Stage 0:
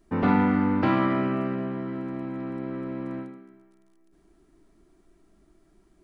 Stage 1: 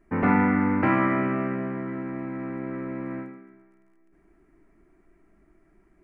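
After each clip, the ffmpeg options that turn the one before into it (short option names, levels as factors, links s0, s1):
-af "highshelf=f=2800:t=q:w=3:g=-9"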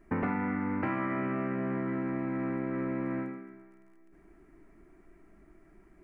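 -af "acompressor=threshold=0.0282:ratio=8,volume=1.33"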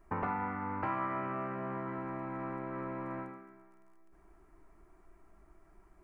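-af "equalizer=f=125:t=o:w=1:g=-3,equalizer=f=250:t=o:w=1:g=-11,equalizer=f=500:t=o:w=1:g=-3,equalizer=f=1000:t=o:w=1:g=6,equalizer=f=2000:t=o:w=1:g=-8"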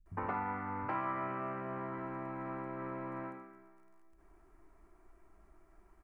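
-filter_complex "[0:a]acrossover=split=160[s0][s1];[s1]adelay=60[s2];[s0][s2]amix=inputs=2:normalize=0,volume=0.841"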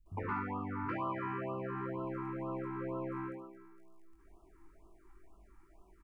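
-af "aecho=1:1:21|69:0.668|0.398,afftfilt=real='re*(1-between(b*sr/1024,520*pow(1900/520,0.5+0.5*sin(2*PI*2.1*pts/sr))/1.41,520*pow(1900/520,0.5+0.5*sin(2*PI*2.1*pts/sr))*1.41))':imag='im*(1-between(b*sr/1024,520*pow(1900/520,0.5+0.5*sin(2*PI*2.1*pts/sr))/1.41,520*pow(1900/520,0.5+0.5*sin(2*PI*2.1*pts/sr))*1.41))':win_size=1024:overlap=0.75"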